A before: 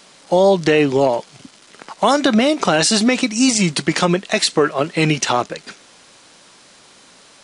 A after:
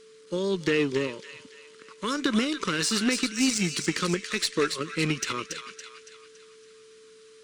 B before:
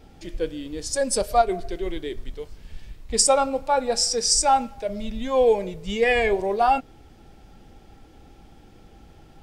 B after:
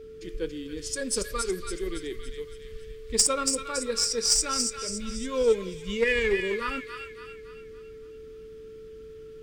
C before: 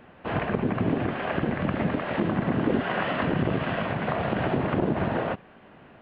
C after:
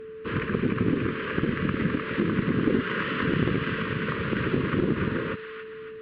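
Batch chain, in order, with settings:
Chebyshev band-stop filter 450–1,200 Hz, order 2
on a send: delay with a high-pass on its return 281 ms, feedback 47%, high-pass 1,500 Hz, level −4.5 dB
on the sum: harmonic generator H 6 −35 dB, 7 −26 dB, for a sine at −1 dBFS
steady tone 440 Hz −42 dBFS
loudness normalisation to −27 LKFS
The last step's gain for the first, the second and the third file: −8.0, +0.5, +4.5 decibels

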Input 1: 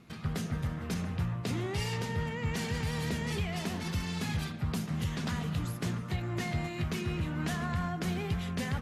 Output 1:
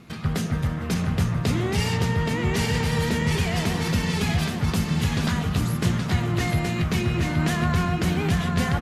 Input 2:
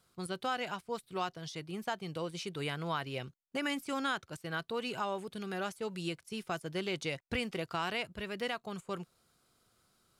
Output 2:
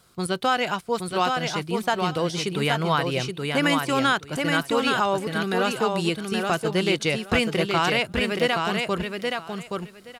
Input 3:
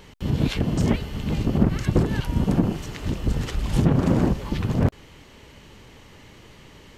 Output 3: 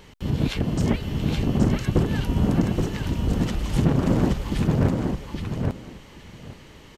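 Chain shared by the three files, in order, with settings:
repeating echo 823 ms, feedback 16%, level −4 dB
loudness normalisation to −24 LKFS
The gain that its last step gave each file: +9.0, +12.5, −1.0 decibels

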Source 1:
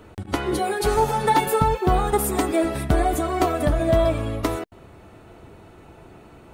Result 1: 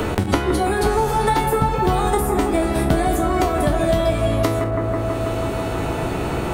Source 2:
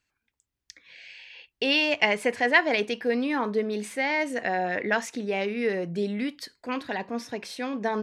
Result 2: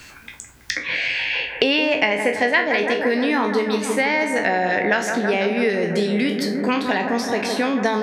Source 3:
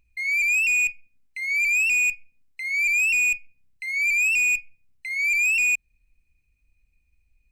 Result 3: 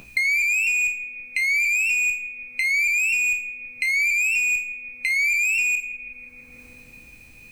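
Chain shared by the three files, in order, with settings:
peak hold with a decay on every bin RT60 0.30 s
bucket-brigade delay 163 ms, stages 2,048, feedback 69%, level −8 dB
multiband upward and downward compressor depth 100%
loudness normalisation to −20 LKFS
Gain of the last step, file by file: 0.0, +5.0, −1.0 decibels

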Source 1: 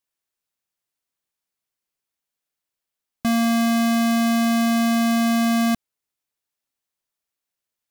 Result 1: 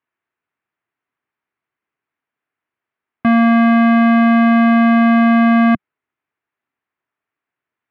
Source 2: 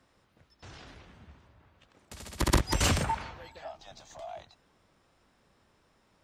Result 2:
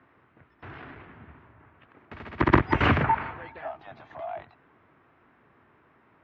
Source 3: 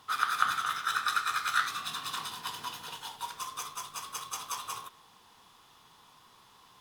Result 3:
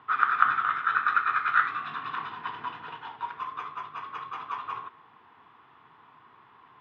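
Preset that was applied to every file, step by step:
loudspeaker in its box 120–2,200 Hz, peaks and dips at 190 Hz −8 dB, 540 Hz −8 dB, 800 Hz −3 dB
normalise the peak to −3 dBFS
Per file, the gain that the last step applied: +11.0, +10.0, +6.0 decibels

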